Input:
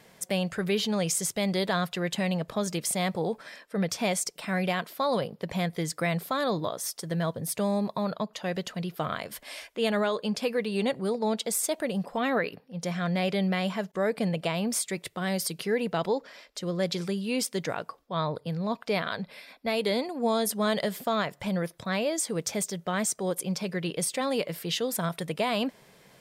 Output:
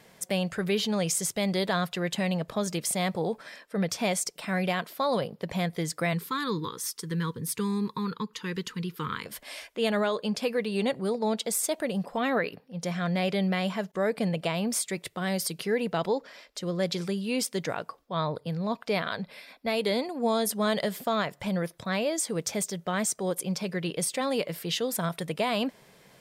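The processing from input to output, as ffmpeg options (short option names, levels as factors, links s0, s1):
-filter_complex "[0:a]asettb=1/sr,asplit=3[s0][s1][s2];[s0]atrim=end=6.134[s3];[s1]atrim=start=6.13:end=9.26,asetpts=PTS-STARTPTS,afade=t=in:d=0.004:c=qsin,afade=t=out:st=3.126:d=0.004:c=qsin,asuperstop=centerf=660:order=8:qfactor=1.6[s4];[s2]atrim=start=9.256[s5];[s3][s4]acrossfade=d=0.004:c1=hsin:c2=qsin[s6];[s6][s5]acrossfade=d=0.004:c1=qsin:c2=hsin"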